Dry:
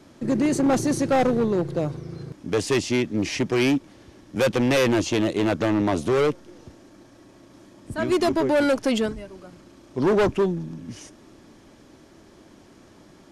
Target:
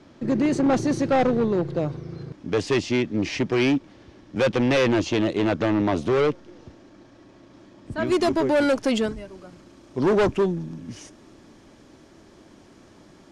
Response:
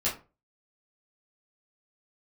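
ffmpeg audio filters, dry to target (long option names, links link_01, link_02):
-af "asetnsamples=nb_out_samples=441:pad=0,asendcmd='8.07 lowpass f 9700',lowpass=5100"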